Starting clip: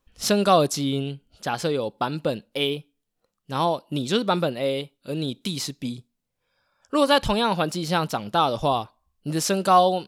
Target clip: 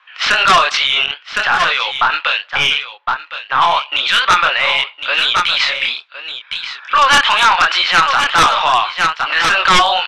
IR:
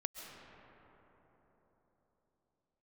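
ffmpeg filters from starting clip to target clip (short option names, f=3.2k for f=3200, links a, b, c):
-filter_complex "[0:a]highpass=f=1.2k:w=0.5412,highpass=f=1.2k:w=1.3066,deesser=0.5,lowpass=f=2.8k:w=0.5412,lowpass=f=2.8k:w=1.3066,flanger=delay=22.5:depth=6.9:speed=2.3,aeval=exprs='(tanh(10*val(0)+0.65)-tanh(0.65))/10':c=same,asettb=1/sr,asplit=3[a][b][c];[a]atrim=end=1.064[d];[b]atrim=start=1.06:end=3.62,asetpts=PTS-STARTPTS,afade=t=in:d=0.004:c=qsin,afade=t=out:st=2.556:d=0.004:c=qsin,acrossover=split=1800[e][f];[e]aeval=exprs='val(0)*(1-0.7/2+0.7/2*cos(2*PI*2*n/s))':c=same[g];[f]aeval=exprs='val(0)*(1-0.7/2-0.7/2*cos(2*PI*2*n/s))':c=same[h];[g][h]amix=inputs=2:normalize=0[i];[c]atrim=start=3.616[j];[d][i]acrossfade=d=0.004:c1=hsin:c2=qsin[k];[k][j]acrossfade=d=0.004:c1=qsin:c2=hsin,aeval=exprs='0.112*sin(PI/2*3.55*val(0)/0.112)':c=same,aecho=1:1:1061:0.188[l];[1:a]atrim=start_sample=2205,atrim=end_sample=3528,asetrate=38808,aresample=44100[m];[l][m]afir=irnorm=-1:irlink=0,alimiter=level_in=31.5dB:limit=-1dB:release=50:level=0:latency=1,volume=-4dB"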